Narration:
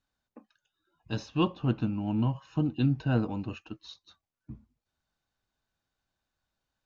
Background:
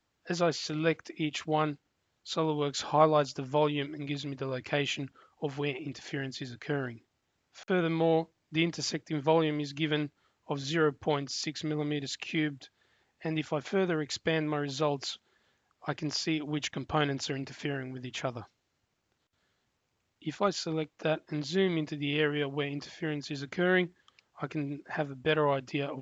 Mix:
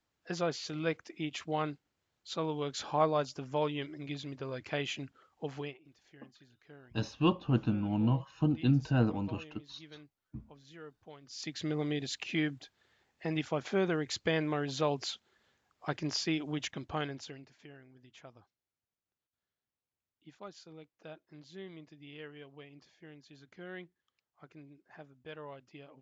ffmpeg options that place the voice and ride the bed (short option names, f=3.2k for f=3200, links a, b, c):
-filter_complex "[0:a]adelay=5850,volume=-1dB[a];[1:a]volume=16dB,afade=t=out:st=5.58:d=0.2:silence=0.133352,afade=t=in:st=11.22:d=0.42:silence=0.0891251,afade=t=out:st=16.33:d=1.18:silence=0.133352[b];[a][b]amix=inputs=2:normalize=0"